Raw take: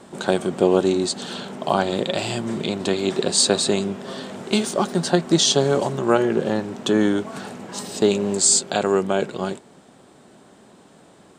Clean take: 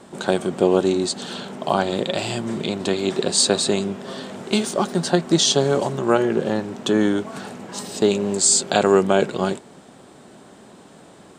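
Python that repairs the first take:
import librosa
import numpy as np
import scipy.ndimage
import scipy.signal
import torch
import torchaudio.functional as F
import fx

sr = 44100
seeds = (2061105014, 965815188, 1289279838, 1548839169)

y = fx.fix_level(x, sr, at_s=8.59, step_db=4.0)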